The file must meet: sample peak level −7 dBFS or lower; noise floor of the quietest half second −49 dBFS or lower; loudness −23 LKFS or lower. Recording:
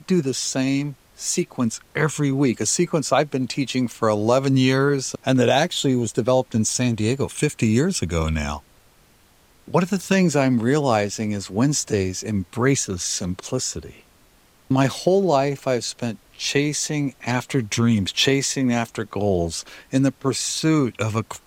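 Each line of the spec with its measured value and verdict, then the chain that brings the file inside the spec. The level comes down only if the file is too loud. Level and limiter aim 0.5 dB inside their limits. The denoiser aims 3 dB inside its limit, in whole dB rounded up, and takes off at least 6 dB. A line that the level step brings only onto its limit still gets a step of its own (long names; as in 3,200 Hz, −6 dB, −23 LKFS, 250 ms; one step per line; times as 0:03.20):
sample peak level −4.5 dBFS: out of spec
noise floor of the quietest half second −55 dBFS: in spec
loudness −21.5 LKFS: out of spec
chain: level −2 dB
brickwall limiter −7.5 dBFS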